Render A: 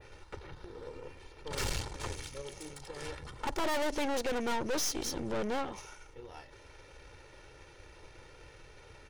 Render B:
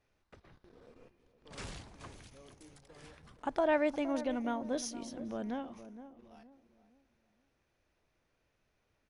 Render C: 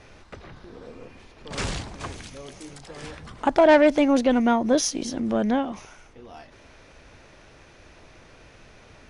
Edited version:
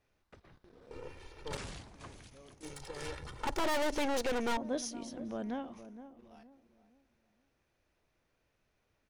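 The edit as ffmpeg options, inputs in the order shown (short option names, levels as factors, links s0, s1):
-filter_complex "[0:a]asplit=2[s0][s1];[1:a]asplit=3[s2][s3][s4];[s2]atrim=end=0.912[s5];[s0]atrim=start=0.908:end=1.572[s6];[s3]atrim=start=1.568:end=2.632[s7];[s1]atrim=start=2.628:end=4.572[s8];[s4]atrim=start=4.568[s9];[s5][s6]acrossfade=d=0.004:c1=hsin:c2=hsin[s10];[s10][s7]acrossfade=d=0.004:c1=hsin:c2=hsin[s11];[s11][s8]acrossfade=d=0.004:c1=hsin:c2=hsin[s12];[s12][s9]acrossfade=d=0.004:c1=hsin:c2=hsin"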